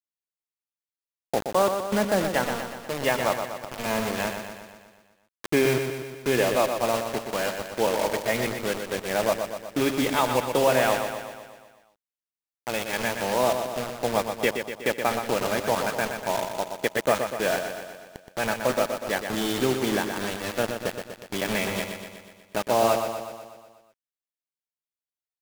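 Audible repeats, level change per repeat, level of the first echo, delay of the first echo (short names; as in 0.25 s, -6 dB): 7, -4.5 dB, -7.0 dB, 0.122 s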